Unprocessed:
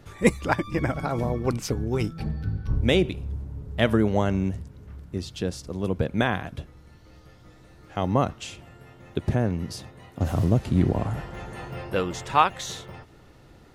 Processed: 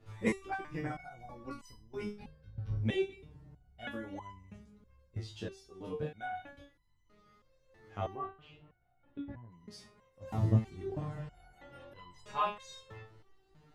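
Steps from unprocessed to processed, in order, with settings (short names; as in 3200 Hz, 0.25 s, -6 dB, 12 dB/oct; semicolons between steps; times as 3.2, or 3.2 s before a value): high shelf 8000 Hz -10 dB; chorus voices 2, 0.21 Hz, delay 20 ms, depth 2.9 ms; 8.15–9.52 air absorption 470 m; stepped resonator 3.1 Hz 110–1000 Hz; gain +3.5 dB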